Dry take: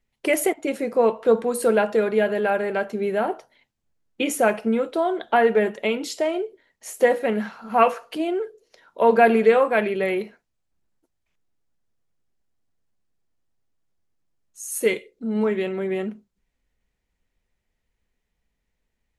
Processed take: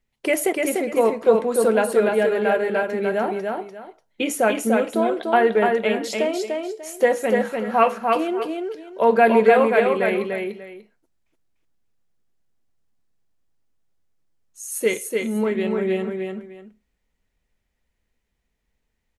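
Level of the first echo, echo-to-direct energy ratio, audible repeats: −3.5 dB, −3.0 dB, 2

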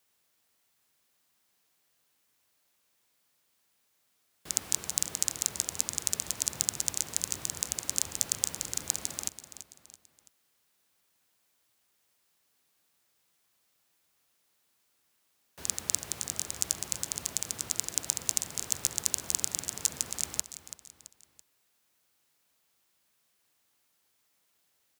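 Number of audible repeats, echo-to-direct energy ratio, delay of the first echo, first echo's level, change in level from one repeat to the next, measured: 3, −11.5 dB, 333 ms, −12.5 dB, −7.0 dB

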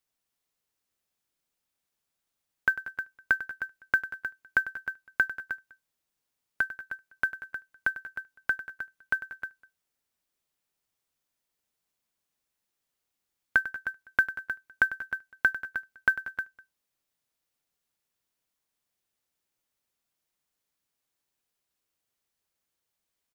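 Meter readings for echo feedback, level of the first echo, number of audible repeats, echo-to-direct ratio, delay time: repeats not evenly spaced, −14.5 dB, 3, −8.0 dB, 98 ms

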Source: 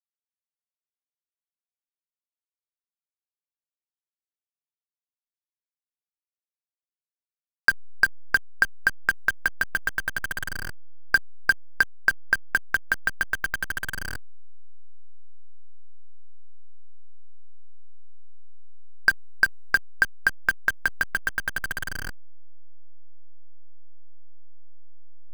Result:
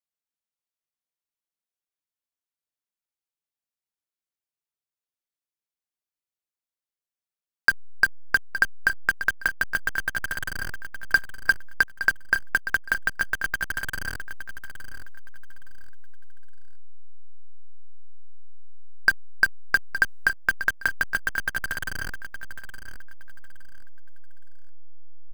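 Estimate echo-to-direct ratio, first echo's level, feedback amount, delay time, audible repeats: −11.0 dB, −11.5 dB, 26%, 866 ms, 3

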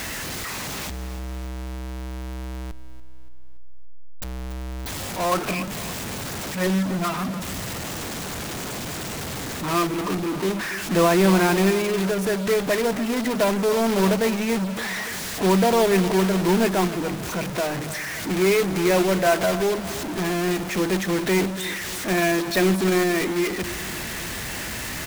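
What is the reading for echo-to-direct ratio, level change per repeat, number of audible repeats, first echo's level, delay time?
−13.5 dB, −6.0 dB, 4, −14.5 dB, 286 ms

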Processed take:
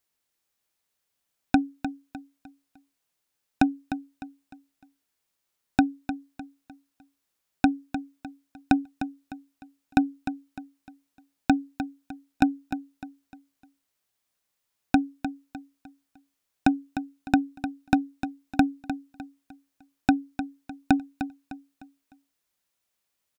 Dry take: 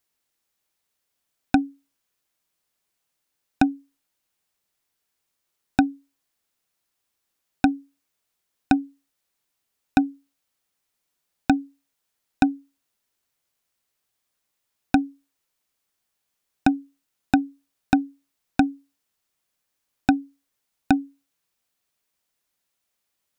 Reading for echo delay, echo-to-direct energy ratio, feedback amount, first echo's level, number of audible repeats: 303 ms, −10.0 dB, 36%, −10.5 dB, 3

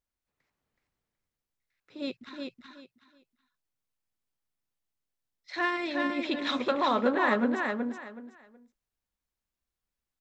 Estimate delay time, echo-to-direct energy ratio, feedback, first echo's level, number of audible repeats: 373 ms, −4.0 dB, 23%, −4.0 dB, 3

